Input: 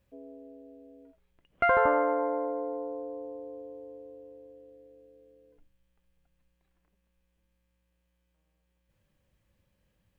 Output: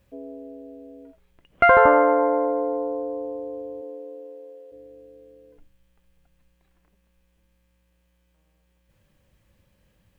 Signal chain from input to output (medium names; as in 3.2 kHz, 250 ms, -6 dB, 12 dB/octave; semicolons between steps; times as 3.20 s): 3.81–4.71 s: high-pass 200 Hz -> 430 Hz 24 dB/octave; trim +9 dB